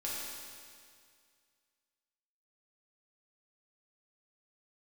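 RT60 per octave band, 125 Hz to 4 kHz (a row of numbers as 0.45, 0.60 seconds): 2.1, 2.1, 2.1, 2.1, 2.1, 2.1 seconds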